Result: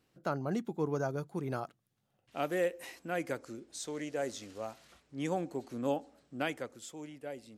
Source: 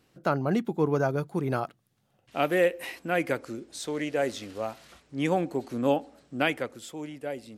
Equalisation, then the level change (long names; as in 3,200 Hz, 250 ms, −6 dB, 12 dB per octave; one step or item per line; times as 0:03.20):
dynamic equaliser 2,500 Hz, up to −4 dB, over −43 dBFS, Q 1.6
dynamic equaliser 6,700 Hz, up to +7 dB, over −59 dBFS, Q 1.6
−8.0 dB